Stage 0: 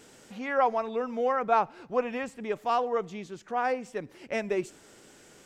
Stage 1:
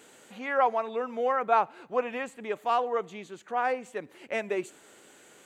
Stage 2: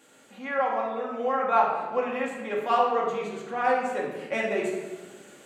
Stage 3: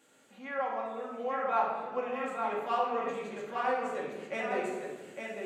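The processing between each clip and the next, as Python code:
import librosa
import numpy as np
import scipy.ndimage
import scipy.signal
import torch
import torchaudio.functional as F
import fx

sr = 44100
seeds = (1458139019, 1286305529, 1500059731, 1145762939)

y1 = fx.highpass(x, sr, hz=390.0, slope=6)
y1 = fx.peak_eq(y1, sr, hz=5300.0, db=-13.0, octaves=0.25)
y1 = F.gain(torch.from_numpy(y1), 1.5).numpy()
y2 = fx.rider(y1, sr, range_db=10, speed_s=2.0)
y2 = fx.room_shoebox(y2, sr, seeds[0], volume_m3=950.0, walls='mixed', distance_m=2.3)
y2 = F.gain(torch.from_numpy(y2), -3.0).numpy()
y3 = y2 + 10.0 ** (-5.0 / 20.0) * np.pad(y2, (int(857 * sr / 1000.0), 0))[:len(y2)]
y3 = F.gain(torch.from_numpy(y3), -7.5).numpy()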